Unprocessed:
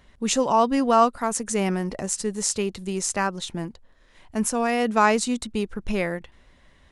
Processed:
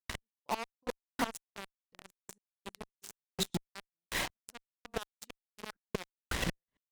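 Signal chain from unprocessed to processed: chunks repeated in reverse 317 ms, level -8.5 dB; high-pass 68 Hz 6 dB/octave; reverse; compression 5:1, threshold -29 dBFS, peak gain reduction 15.5 dB; reverse; inverted gate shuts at -24 dBFS, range -31 dB; trance gate ".x...xx." 164 bpm -60 dB; in parallel at -7.5 dB: fuzz box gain 63 dB, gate -56 dBFS; on the sum: trim -6.5 dB

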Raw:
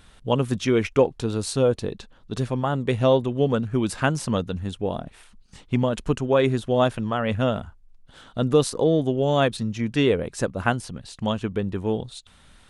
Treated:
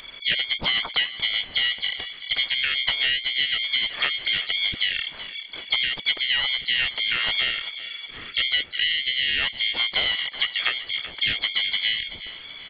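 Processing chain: compression 8:1, threshold -30 dBFS, peak gain reduction 17 dB; frequency inversion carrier 3.4 kHz; on a send: thinning echo 380 ms, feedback 44%, high-pass 230 Hz, level -14 dB; on the sum: harmony voices -7 st -4 dB, +5 st -16 dB; loudspeaker Doppler distortion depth 0.27 ms; trim +7.5 dB

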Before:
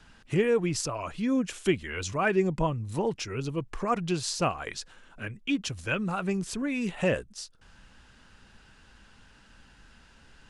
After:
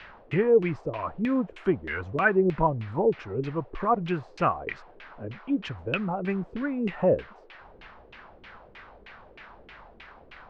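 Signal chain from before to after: band noise 340–4900 Hz -50 dBFS; LFO low-pass saw down 3.2 Hz 350–2600 Hz

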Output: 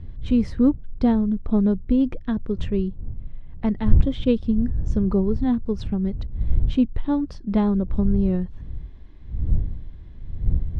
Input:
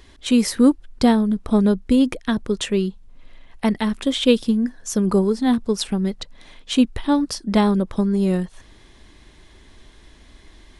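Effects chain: wind noise 86 Hz -29 dBFS; low-pass 4.4 kHz 12 dB/octave; tilt EQ -3 dB/octave; trim -9 dB

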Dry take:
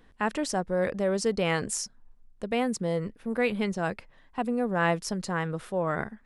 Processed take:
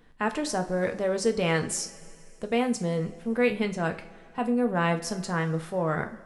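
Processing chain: two-slope reverb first 0.33 s, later 2.6 s, from -19 dB, DRR 5.5 dB

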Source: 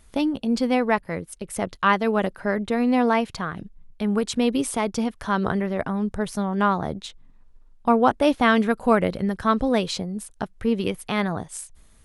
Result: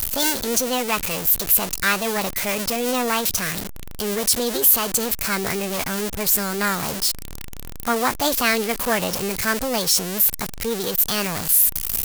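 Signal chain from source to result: jump at every zero crossing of -21 dBFS; formant shift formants +5 st; pre-emphasis filter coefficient 0.8; trim +7.5 dB

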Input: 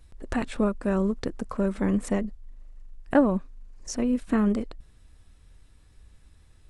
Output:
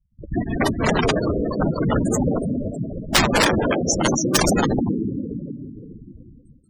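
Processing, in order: backward echo that repeats 150 ms, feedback 73%, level -2 dB; treble shelf 6.1 kHz +4.5 dB; band-stop 2.9 kHz, Q 27; in parallel at -12 dB: sine folder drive 4 dB, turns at -8 dBFS; on the sum: whisper effect; gate with hold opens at -32 dBFS; on a send: thinning echo 184 ms, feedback 34%, high-pass 200 Hz, level -5.5 dB; on the sum: integer overflow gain 11 dB; treble shelf 2.6 kHz +10.5 dB; spectral gate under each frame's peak -10 dB strong

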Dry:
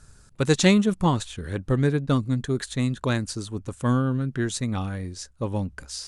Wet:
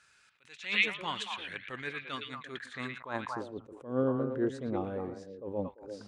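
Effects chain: band-pass sweep 2.4 kHz -> 480 Hz, 2.37–3.64 s; repeats whose band climbs or falls 114 ms, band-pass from 2.7 kHz, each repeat -1.4 oct, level -2 dB; attacks held to a fixed rise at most 140 dB/s; trim +5.5 dB

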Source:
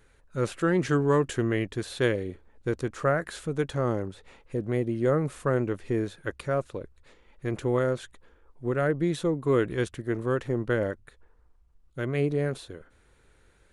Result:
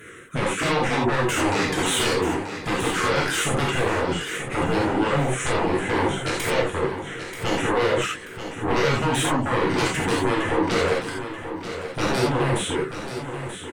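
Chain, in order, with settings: sawtooth pitch modulation -4 st, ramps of 155 ms; compression 16:1, threshold -31 dBFS, peak gain reduction 13 dB; Bessel high-pass 220 Hz, order 2; static phaser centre 2 kHz, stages 4; sine folder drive 17 dB, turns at -24 dBFS; feedback delay 933 ms, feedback 35%, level -10 dB; gated-style reverb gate 110 ms flat, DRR -4.5 dB

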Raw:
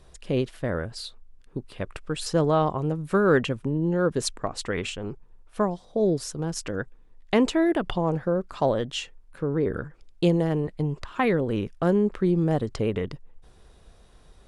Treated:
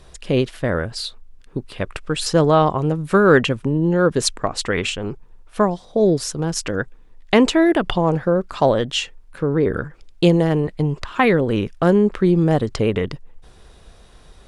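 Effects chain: peaking EQ 3.1 kHz +3 dB 3 oct; trim +6.5 dB

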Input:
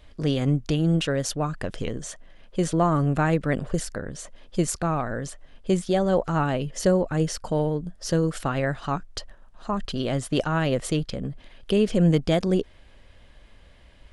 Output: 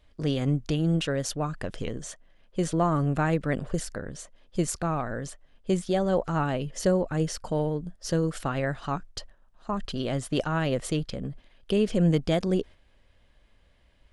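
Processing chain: gate -38 dBFS, range -7 dB; trim -3 dB

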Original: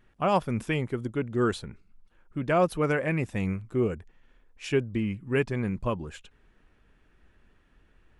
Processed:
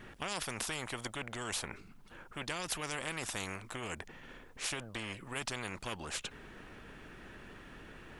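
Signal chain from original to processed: peak limiter -19.5 dBFS, peak gain reduction 6.5 dB; spectrum-flattening compressor 4:1; trim +1 dB

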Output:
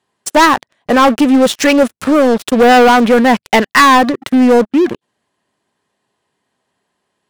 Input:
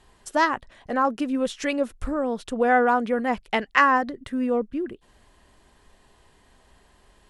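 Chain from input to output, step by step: high-pass 120 Hz 24 dB/octave; waveshaping leveller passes 5

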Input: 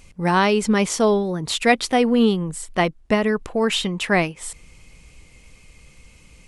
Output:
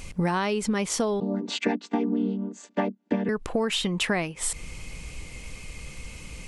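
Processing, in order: 1.20–3.29 s: vocoder on a held chord minor triad, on G3; compression 16:1, threshold -31 dBFS, peak gain reduction 21 dB; trim +8.5 dB

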